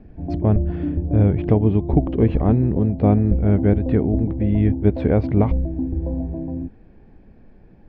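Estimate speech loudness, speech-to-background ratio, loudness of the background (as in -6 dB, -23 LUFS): -20.0 LUFS, 6.0 dB, -26.0 LUFS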